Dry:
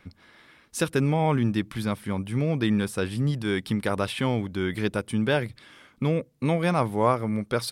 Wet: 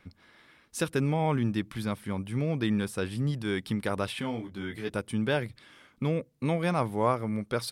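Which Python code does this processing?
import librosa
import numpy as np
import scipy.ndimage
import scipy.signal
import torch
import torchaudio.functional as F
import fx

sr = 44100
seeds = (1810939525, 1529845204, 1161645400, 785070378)

y = fx.detune_double(x, sr, cents=13, at=(4.2, 4.88), fade=0.02)
y = y * 10.0 ** (-4.0 / 20.0)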